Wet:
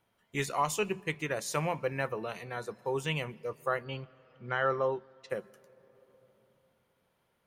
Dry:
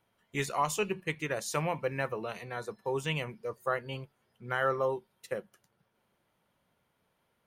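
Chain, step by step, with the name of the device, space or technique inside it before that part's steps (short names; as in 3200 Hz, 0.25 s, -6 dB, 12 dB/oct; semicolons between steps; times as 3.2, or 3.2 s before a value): compressed reverb return (on a send at -12.5 dB: reverb RT60 2.4 s, pre-delay 0.118 s + compressor 4:1, threshold -46 dBFS, peak gain reduction 16.5 dB); 3.84–5.3 on the sum: LPF 5700 Hz 24 dB/oct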